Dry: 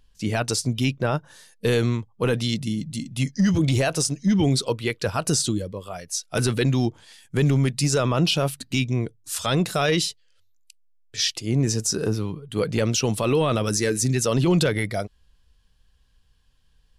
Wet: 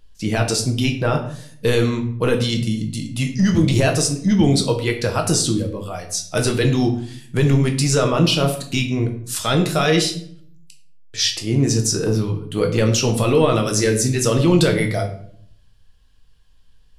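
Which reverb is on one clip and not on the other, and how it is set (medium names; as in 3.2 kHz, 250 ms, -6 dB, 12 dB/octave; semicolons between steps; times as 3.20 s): simulated room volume 84 m³, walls mixed, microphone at 0.55 m; trim +2.5 dB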